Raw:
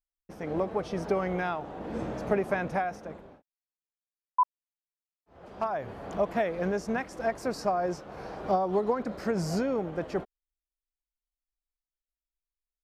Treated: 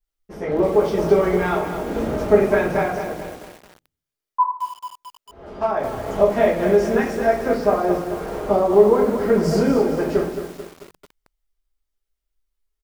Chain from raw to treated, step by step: 7.34–9.43 LPF 3200 Hz 12 dB/oct; on a send: feedback echo 0.121 s, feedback 36%, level -20 dB; on the sum: shoebox room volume 40 m³, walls mixed, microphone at 1.5 m; lo-fi delay 0.22 s, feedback 55%, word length 6-bit, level -8.5 dB

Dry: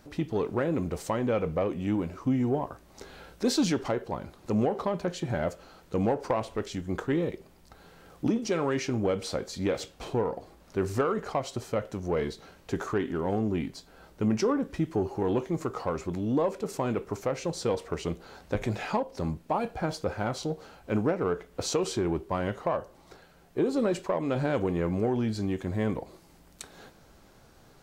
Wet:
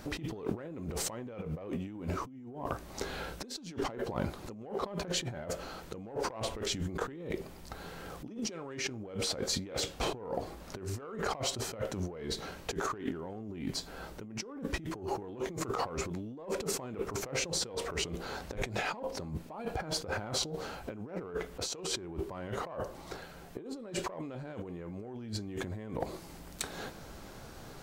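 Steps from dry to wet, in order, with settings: 2–4.56 dynamic EQ 250 Hz, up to +4 dB, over -37 dBFS, Q 2.7; negative-ratio compressor -39 dBFS, ratio -1; overloaded stage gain 22 dB

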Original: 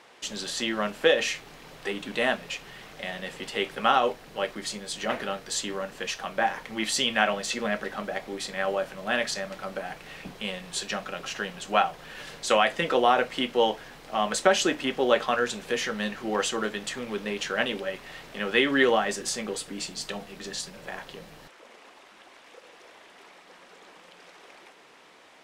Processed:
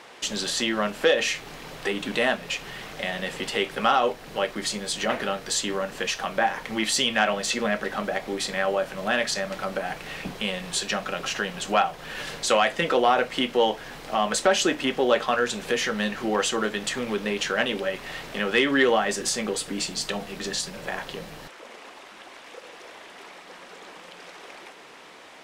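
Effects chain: in parallel at +2 dB: compressor, threshold -33 dBFS, peak gain reduction 17 dB; on the sum: soft clip -8 dBFS, distortion -23 dB

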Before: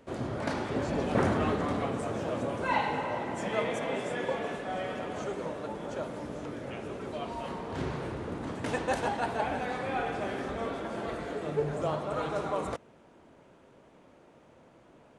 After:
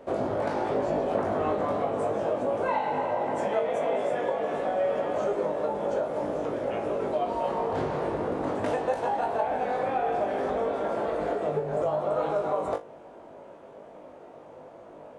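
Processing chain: bell 630 Hz +14 dB 1.9 oct; compressor, threshold -25 dBFS, peak gain reduction 13.5 dB; resonator 51 Hz, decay 0.2 s, harmonics all, mix 100%; gain +5.5 dB

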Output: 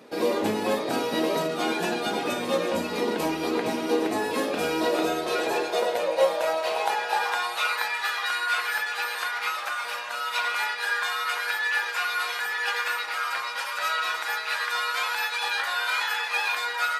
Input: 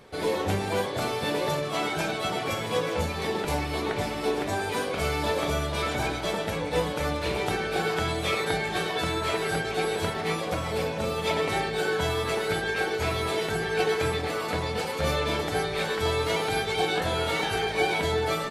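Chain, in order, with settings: high-pass sweep 240 Hz -> 1200 Hz, 4.93–8.76; speed mistake 44.1 kHz file played as 48 kHz

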